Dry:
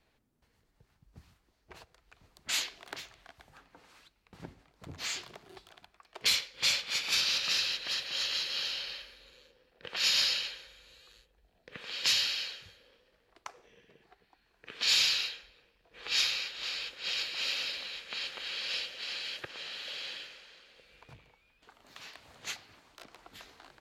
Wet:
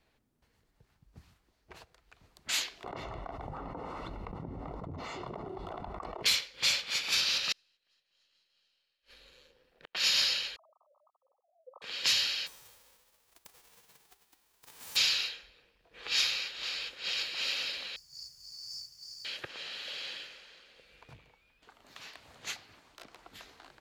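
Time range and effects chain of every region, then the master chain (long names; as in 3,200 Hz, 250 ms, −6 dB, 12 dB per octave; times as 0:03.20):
0:02.84–0:06.23: Savitzky-Golay smoothing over 65 samples + envelope flattener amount 100%
0:07.52–0:09.95: gain on one half-wave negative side −3 dB + gate with flip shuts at −33 dBFS, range −39 dB
0:10.56–0:11.82: three sine waves on the formant tracks + linear-phase brick-wall low-pass 1,300 Hz + low-shelf EQ 320 Hz −10.5 dB
0:12.46–0:14.95: spectral envelope flattened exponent 0.1 + parametric band 890 Hz +5 dB 0.55 octaves + downward compressor 3 to 1, threshold −52 dBFS
0:17.96–0:19.25: linear-phase brick-wall band-stop 160–4,400 Hz + notch comb filter 220 Hz + log-companded quantiser 6 bits
whole clip: no processing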